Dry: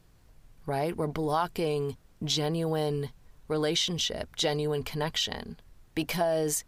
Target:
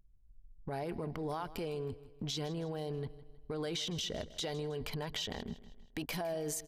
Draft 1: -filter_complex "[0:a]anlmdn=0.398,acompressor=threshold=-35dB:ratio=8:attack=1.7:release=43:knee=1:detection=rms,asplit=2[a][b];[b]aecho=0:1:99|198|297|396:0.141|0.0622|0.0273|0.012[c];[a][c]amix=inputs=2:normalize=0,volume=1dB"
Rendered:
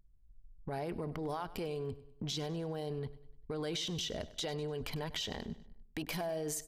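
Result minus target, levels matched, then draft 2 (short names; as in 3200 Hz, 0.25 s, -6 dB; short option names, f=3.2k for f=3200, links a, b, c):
echo 60 ms early
-filter_complex "[0:a]anlmdn=0.398,acompressor=threshold=-35dB:ratio=8:attack=1.7:release=43:knee=1:detection=rms,asplit=2[a][b];[b]aecho=0:1:159|318|477|636:0.141|0.0622|0.0273|0.012[c];[a][c]amix=inputs=2:normalize=0,volume=1dB"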